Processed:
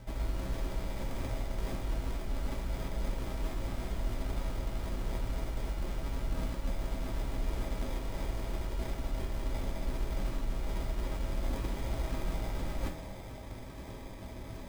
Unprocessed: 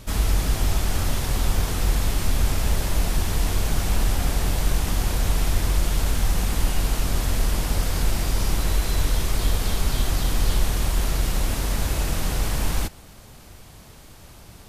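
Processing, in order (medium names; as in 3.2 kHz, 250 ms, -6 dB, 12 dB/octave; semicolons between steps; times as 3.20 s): reverse; compression 10:1, threshold -31 dBFS, peak gain reduction 18 dB; reverse; sample-and-hold 31×; reverberation, pre-delay 3 ms, DRR -1.5 dB; trim -2.5 dB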